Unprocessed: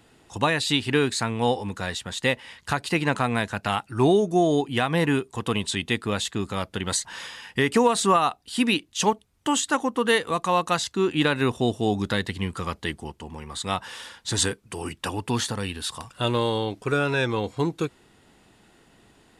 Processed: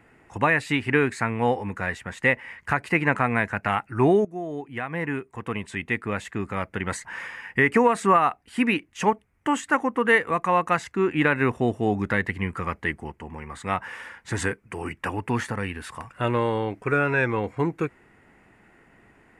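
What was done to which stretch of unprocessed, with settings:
4.25–6.90 s: fade in, from -14.5 dB
whole clip: resonant high shelf 2.8 kHz -9.5 dB, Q 3

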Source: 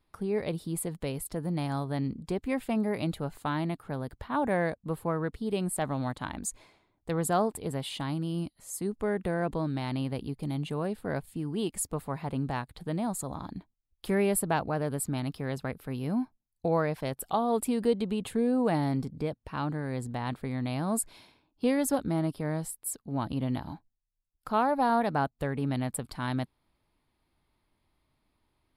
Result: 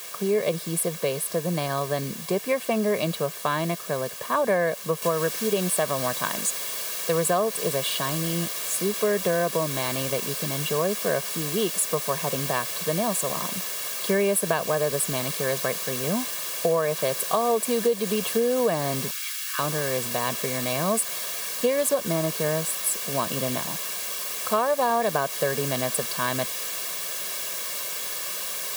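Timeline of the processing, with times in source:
5.02 s: noise floor step -48 dB -41 dB
19.11–19.59 s: elliptic high-pass 1.3 kHz, stop band 50 dB
whole clip: high-pass 180 Hz 24 dB/octave; comb 1.8 ms, depth 74%; compression 6:1, threshold -27 dBFS; trim +8 dB

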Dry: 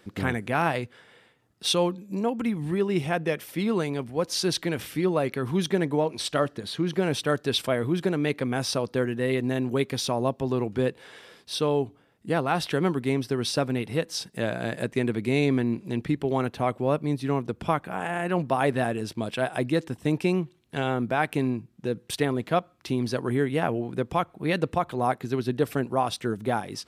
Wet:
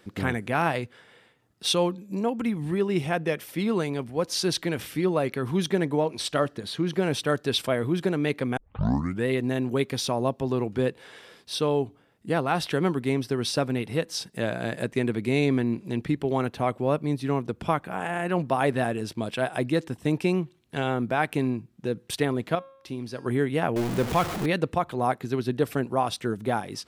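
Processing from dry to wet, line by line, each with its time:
8.57 s: tape start 0.69 s
22.55–23.26 s: feedback comb 270 Hz, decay 0.79 s
23.76–24.46 s: jump at every zero crossing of -26 dBFS

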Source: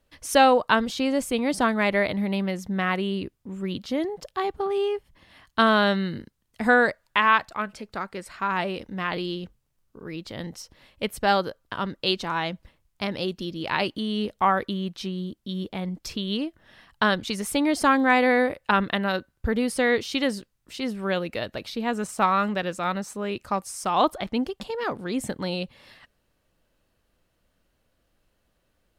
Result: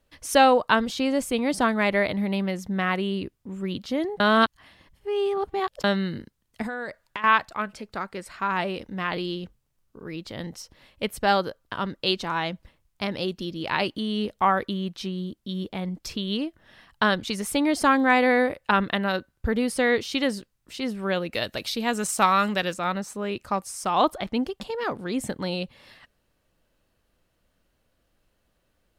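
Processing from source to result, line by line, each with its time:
4.20–5.84 s: reverse
6.62–7.24 s: compression 16:1, threshold -28 dBFS
21.34–22.74 s: treble shelf 2.8 kHz +11 dB

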